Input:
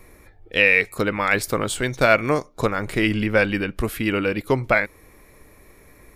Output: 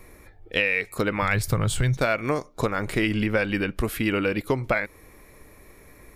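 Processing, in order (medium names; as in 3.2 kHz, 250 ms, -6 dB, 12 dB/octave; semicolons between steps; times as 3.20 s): 1.22–1.97 s: resonant low shelf 190 Hz +12 dB, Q 1.5; compression 6:1, threshold -19 dBFS, peak gain reduction 9 dB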